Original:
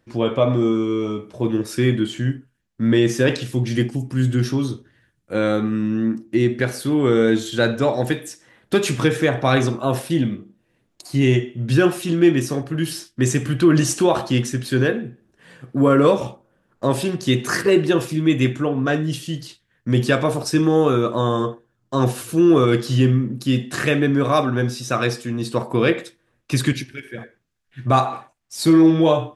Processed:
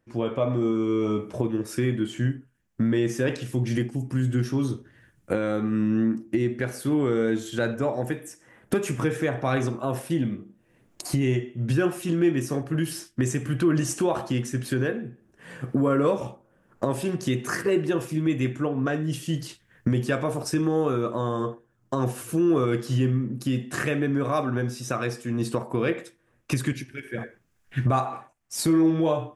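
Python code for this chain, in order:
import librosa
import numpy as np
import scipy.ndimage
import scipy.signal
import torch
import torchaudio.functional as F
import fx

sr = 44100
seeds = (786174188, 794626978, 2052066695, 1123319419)

y = fx.recorder_agc(x, sr, target_db=-8.5, rise_db_per_s=19.0, max_gain_db=30)
y = fx.peak_eq(y, sr, hz=4000.0, db=fx.steps((0.0, -7.0), (7.74, -14.0), (9.09, -7.5)), octaves=0.81)
y = y * librosa.db_to_amplitude(-7.5)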